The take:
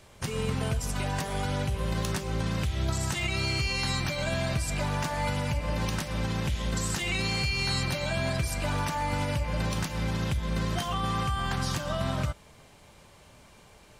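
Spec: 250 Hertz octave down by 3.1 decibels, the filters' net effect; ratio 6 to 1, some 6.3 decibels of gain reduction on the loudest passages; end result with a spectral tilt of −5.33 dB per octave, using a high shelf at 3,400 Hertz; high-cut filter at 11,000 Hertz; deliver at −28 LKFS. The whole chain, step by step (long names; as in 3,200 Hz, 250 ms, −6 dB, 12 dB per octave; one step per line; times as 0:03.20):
low-pass filter 11,000 Hz
parametric band 250 Hz −5 dB
high-shelf EQ 3,400 Hz −8.5 dB
downward compressor 6 to 1, threshold −32 dBFS
level +8.5 dB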